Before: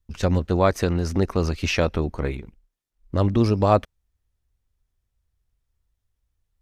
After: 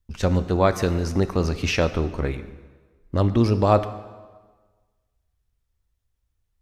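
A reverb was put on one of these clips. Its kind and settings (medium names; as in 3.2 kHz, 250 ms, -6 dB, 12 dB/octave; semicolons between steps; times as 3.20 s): plate-style reverb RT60 1.4 s, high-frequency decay 0.85×, pre-delay 0 ms, DRR 11 dB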